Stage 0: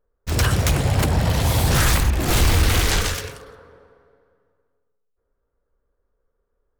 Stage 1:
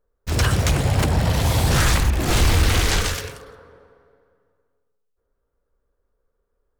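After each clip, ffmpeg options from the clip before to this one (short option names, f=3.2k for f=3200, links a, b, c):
-filter_complex "[0:a]acrossover=split=9700[a][b];[b]acompressor=threshold=-34dB:ratio=4:attack=1:release=60[c];[a][c]amix=inputs=2:normalize=0"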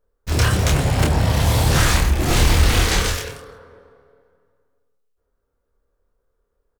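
-filter_complex "[0:a]asplit=2[a][b];[b]adelay=27,volume=-3dB[c];[a][c]amix=inputs=2:normalize=0"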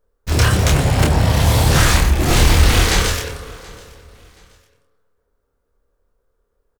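-af "aecho=1:1:727|1454:0.0708|0.0234,volume=3dB"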